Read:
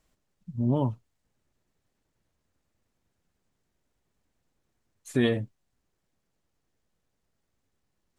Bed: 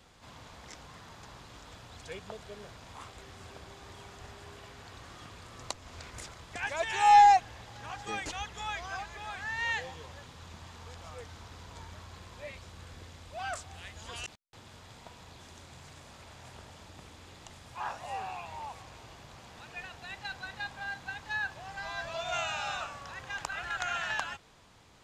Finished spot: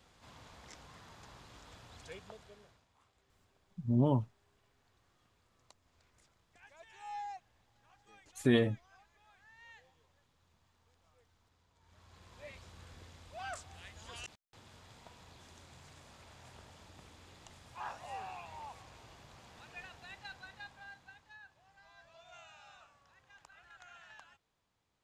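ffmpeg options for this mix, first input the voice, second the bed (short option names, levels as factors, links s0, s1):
-filter_complex "[0:a]adelay=3300,volume=0.708[s0];[1:a]volume=4.73,afade=t=out:st=2.07:d=0.8:silence=0.105925,afade=t=in:st=11.8:d=0.74:silence=0.112202,afade=t=out:st=19.82:d=1.56:silence=0.149624[s1];[s0][s1]amix=inputs=2:normalize=0"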